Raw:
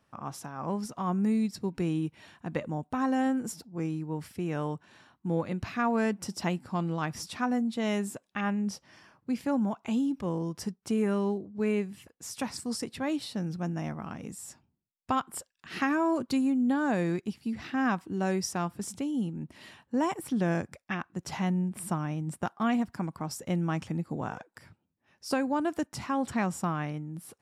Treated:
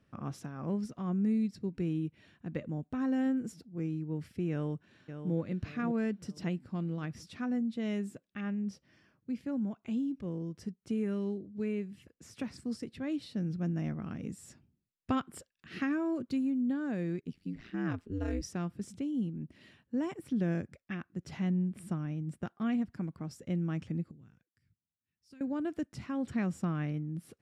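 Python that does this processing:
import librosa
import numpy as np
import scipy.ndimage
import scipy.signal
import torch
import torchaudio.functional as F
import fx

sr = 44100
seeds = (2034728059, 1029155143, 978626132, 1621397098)

y = fx.echo_throw(x, sr, start_s=4.51, length_s=0.83, ms=570, feedback_pct=45, wet_db=-7.5)
y = fx.band_squash(y, sr, depth_pct=40, at=(10.89, 12.8))
y = fx.ring_mod(y, sr, carrier_hz=fx.line((17.2, 36.0), (18.41, 130.0)), at=(17.2, 18.41), fade=0.02)
y = fx.tone_stack(y, sr, knobs='6-0-2', at=(24.11, 25.41))
y = fx.lowpass(y, sr, hz=1800.0, slope=6)
y = fx.peak_eq(y, sr, hz=900.0, db=-14.0, octaves=1.1)
y = fx.rider(y, sr, range_db=10, speed_s=2.0)
y = F.gain(torch.from_numpy(y), -3.0).numpy()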